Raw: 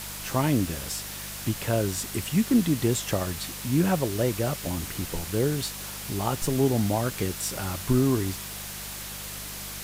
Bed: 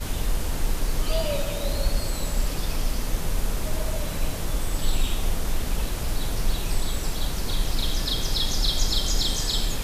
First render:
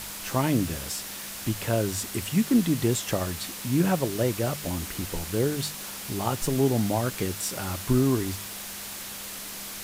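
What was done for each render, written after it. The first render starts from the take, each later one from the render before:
hum removal 50 Hz, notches 3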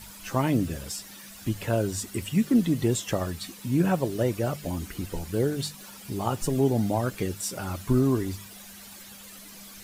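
broadband denoise 12 dB, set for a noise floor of −38 dBFS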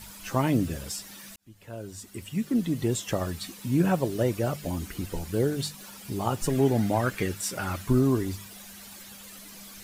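0:01.36–0:03.33: fade in
0:06.37–0:07.87: dynamic equaliser 1,800 Hz, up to +8 dB, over −48 dBFS, Q 1.1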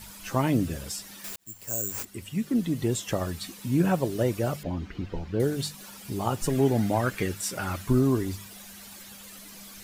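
0:01.24–0:02.05: bad sample-rate conversion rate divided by 6×, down none, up zero stuff
0:04.63–0:05.40: high-frequency loss of the air 220 metres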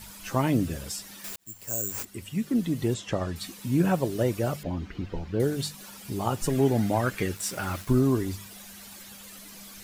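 0:02.94–0:03.36: high-frequency loss of the air 80 metres
0:07.36–0:07.93: centre clipping without the shift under −40 dBFS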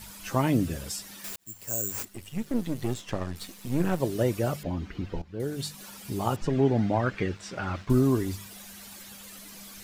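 0:02.08–0:04.00: gain on one half-wave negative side −12 dB
0:05.22–0:05.82: fade in, from −15.5 dB
0:06.36–0:07.90: high-frequency loss of the air 160 metres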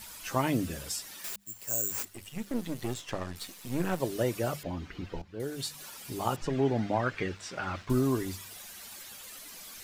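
low-shelf EQ 500 Hz −6 dB
mains-hum notches 50/100/150/200 Hz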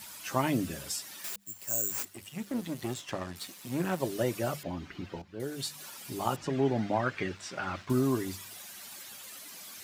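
high-pass filter 100 Hz 12 dB per octave
notch filter 470 Hz, Q 12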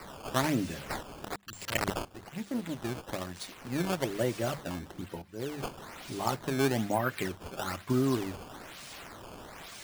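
sample-and-hold swept by an LFO 13×, swing 160% 1.1 Hz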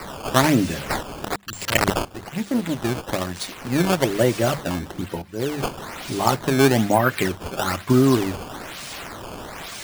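level +11.5 dB

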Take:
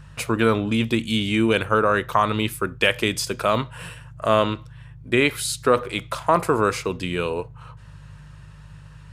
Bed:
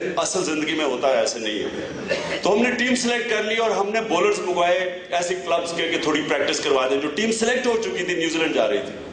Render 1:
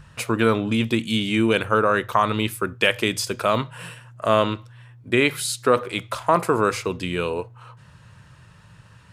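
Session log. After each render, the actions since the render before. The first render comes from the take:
hum removal 50 Hz, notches 3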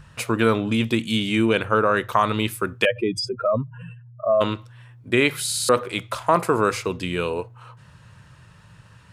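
0:01.45–0:01.97: high-shelf EQ 6,000 Hz −8.5 dB
0:02.85–0:04.41: expanding power law on the bin magnitudes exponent 2.8
0:05.45: stutter in place 0.06 s, 4 plays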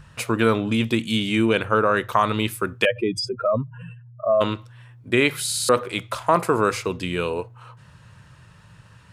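no processing that can be heard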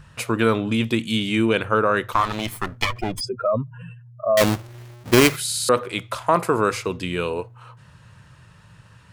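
0:02.13–0:03.21: lower of the sound and its delayed copy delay 0.92 ms
0:04.37–0:05.36: each half-wave held at its own peak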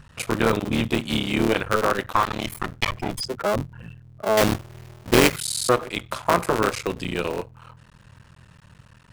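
sub-harmonics by changed cycles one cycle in 3, muted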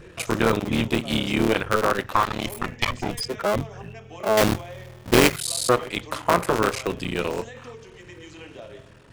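mix in bed −21.5 dB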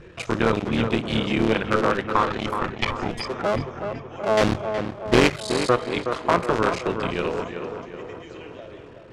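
high-frequency loss of the air 88 metres
tape delay 372 ms, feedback 63%, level −6 dB, low-pass 2,000 Hz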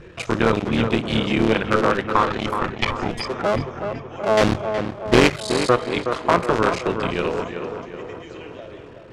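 level +2.5 dB

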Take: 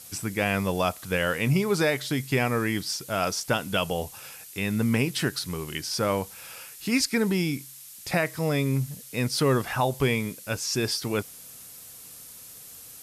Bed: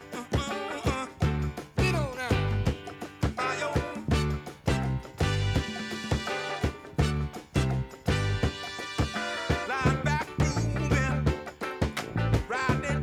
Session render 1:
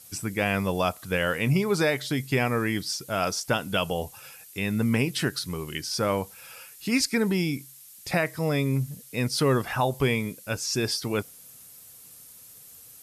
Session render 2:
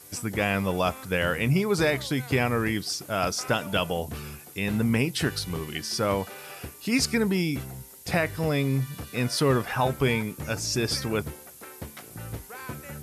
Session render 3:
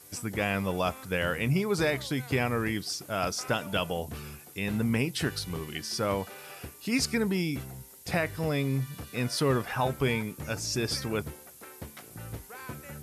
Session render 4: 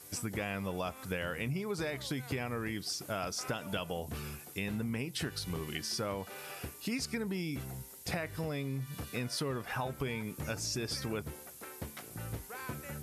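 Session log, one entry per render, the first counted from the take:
broadband denoise 6 dB, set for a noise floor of −46 dBFS
mix in bed −11.5 dB
level −3.5 dB
downward compressor, threshold −33 dBFS, peak gain reduction 11.5 dB

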